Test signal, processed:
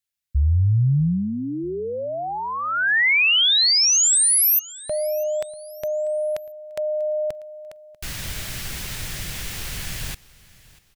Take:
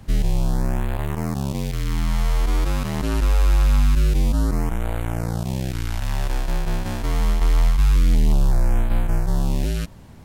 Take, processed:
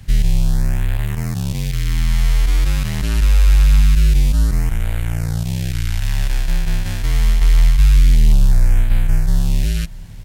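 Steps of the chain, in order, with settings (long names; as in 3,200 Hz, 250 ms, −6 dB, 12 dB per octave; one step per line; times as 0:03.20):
flat-topped bell 520 Hz −10.5 dB 2.9 octaves
repeating echo 642 ms, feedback 37%, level −21.5 dB
level +5.5 dB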